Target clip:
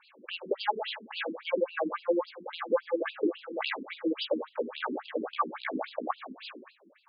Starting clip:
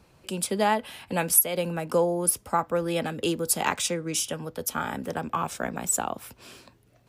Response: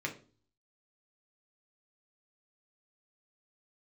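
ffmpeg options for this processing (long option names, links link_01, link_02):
-filter_complex "[0:a]aeval=exprs='(tanh(8.91*val(0)+0.4)-tanh(0.4))/8.91':channel_layout=same,bandreject=frequency=1000:width=13,asplit=2[link_01][link_02];[1:a]atrim=start_sample=2205,asetrate=23814,aresample=44100[link_03];[link_02][link_03]afir=irnorm=-1:irlink=0,volume=-7.5dB[link_04];[link_01][link_04]amix=inputs=2:normalize=0,acompressor=threshold=-27dB:ratio=6,bandreject=frequency=55.73:width_type=h:width=4,bandreject=frequency=111.46:width_type=h:width=4,bandreject=frequency=167.19:width_type=h:width=4,bandreject=frequency=222.92:width_type=h:width=4,bandreject=frequency=278.65:width_type=h:width=4,bandreject=frequency=334.38:width_type=h:width=4,bandreject=frequency=390.11:width_type=h:width=4,bandreject=frequency=445.84:width_type=h:width=4,bandreject=frequency=501.57:width_type=h:width=4,bandreject=frequency=557.3:width_type=h:width=4,bandreject=frequency=613.03:width_type=h:width=4,bandreject=frequency=668.76:width_type=h:width=4,bandreject=frequency=724.49:width_type=h:width=4,afftfilt=real='re*between(b*sr/1024,290*pow(3600/290,0.5+0.5*sin(2*PI*3.6*pts/sr))/1.41,290*pow(3600/290,0.5+0.5*sin(2*PI*3.6*pts/sr))*1.41)':imag='im*between(b*sr/1024,290*pow(3600/290,0.5+0.5*sin(2*PI*3.6*pts/sr))/1.41,290*pow(3600/290,0.5+0.5*sin(2*PI*3.6*pts/sr))*1.41)':win_size=1024:overlap=0.75,volume=8.5dB"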